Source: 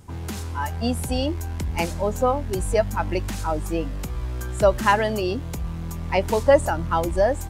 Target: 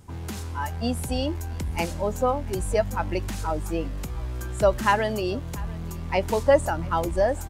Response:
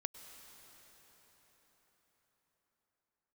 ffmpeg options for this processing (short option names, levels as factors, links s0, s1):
-af "aecho=1:1:693:0.0794,volume=0.75"